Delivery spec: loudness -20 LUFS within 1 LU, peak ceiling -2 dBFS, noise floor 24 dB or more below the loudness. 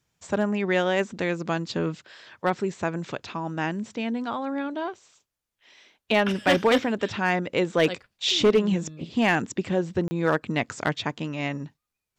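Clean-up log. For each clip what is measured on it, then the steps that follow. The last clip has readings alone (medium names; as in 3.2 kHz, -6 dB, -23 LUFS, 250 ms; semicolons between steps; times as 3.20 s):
clipped samples 0.4%; clipping level -13.0 dBFS; dropouts 1; longest dropout 30 ms; loudness -26.0 LUFS; peak level -13.0 dBFS; loudness target -20.0 LUFS
-> clip repair -13 dBFS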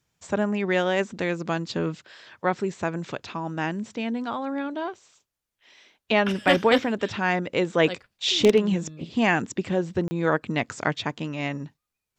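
clipped samples 0.0%; dropouts 1; longest dropout 30 ms
-> interpolate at 10.08 s, 30 ms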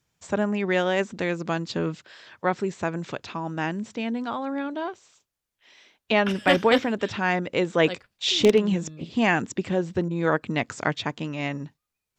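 dropouts 0; loudness -25.5 LUFS; peak level -4.0 dBFS; loudness target -20.0 LUFS
-> trim +5.5 dB; peak limiter -2 dBFS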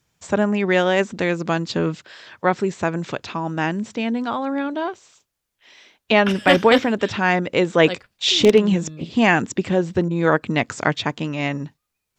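loudness -20.0 LUFS; peak level -2.0 dBFS; noise floor -79 dBFS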